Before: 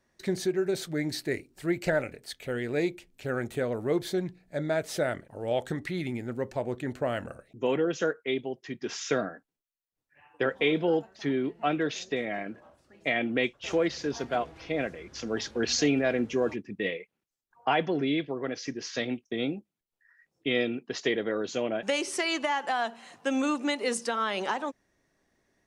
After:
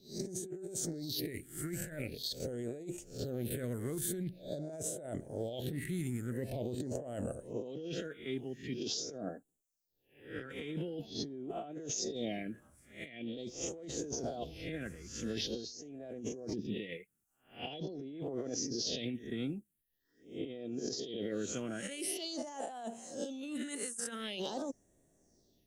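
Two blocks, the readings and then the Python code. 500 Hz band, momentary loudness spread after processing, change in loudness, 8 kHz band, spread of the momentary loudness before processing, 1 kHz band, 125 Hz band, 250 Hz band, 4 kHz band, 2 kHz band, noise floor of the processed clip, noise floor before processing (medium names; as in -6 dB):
-11.5 dB, 7 LU, -9.5 dB, -0.5 dB, 8 LU, -16.0 dB, -4.5 dB, -9.0 dB, -6.5 dB, -16.5 dB, -81 dBFS, -85 dBFS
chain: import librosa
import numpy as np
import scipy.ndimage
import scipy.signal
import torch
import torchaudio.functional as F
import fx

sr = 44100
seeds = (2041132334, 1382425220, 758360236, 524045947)

y = fx.spec_swells(x, sr, rise_s=0.4)
y = fx.high_shelf(y, sr, hz=4400.0, db=11.0)
y = fx.phaser_stages(y, sr, stages=4, low_hz=600.0, high_hz=4400.0, hz=0.45, feedback_pct=45)
y = fx.over_compress(y, sr, threshold_db=-34.0, ratio=-1.0)
y = fx.band_shelf(y, sr, hz=1500.0, db=-10.0, octaves=1.7)
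y = y * 10.0 ** (-5.5 / 20.0)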